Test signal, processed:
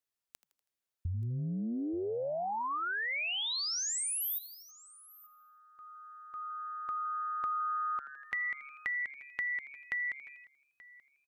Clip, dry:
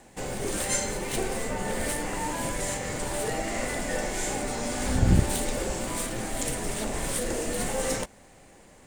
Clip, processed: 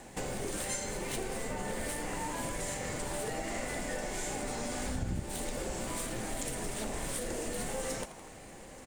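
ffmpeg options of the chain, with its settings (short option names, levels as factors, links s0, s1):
-filter_complex "[0:a]asplit=2[s0][s1];[s1]asplit=4[s2][s3][s4][s5];[s2]adelay=81,afreqshift=140,volume=0.141[s6];[s3]adelay=162,afreqshift=280,volume=0.0692[s7];[s4]adelay=243,afreqshift=420,volume=0.0339[s8];[s5]adelay=324,afreqshift=560,volume=0.0166[s9];[s6][s7][s8][s9]amix=inputs=4:normalize=0[s10];[s0][s10]amix=inputs=2:normalize=0,acompressor=threshold=0.0126:ratio=4,asplit=2[s11][s12];[s12]aecho=0:1:881:0.0841[s13];[s11][s13]amix=inputs=2:normalize=0,volume=1.41"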